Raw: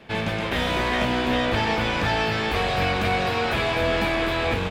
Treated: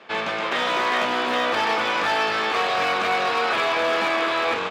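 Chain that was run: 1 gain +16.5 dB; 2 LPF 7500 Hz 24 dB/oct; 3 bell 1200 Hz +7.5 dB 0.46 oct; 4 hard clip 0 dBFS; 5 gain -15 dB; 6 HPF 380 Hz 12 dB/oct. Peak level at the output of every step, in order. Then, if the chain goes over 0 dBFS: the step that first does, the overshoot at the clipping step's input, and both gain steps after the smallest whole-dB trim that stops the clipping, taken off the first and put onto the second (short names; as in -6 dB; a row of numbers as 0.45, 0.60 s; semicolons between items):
+6.0, +6.0, +7.0, 0.0, -15.0, -10.5 dBFS; step 1, 7.0 dB; step 1 +9.5 dB, step 5 -8 dB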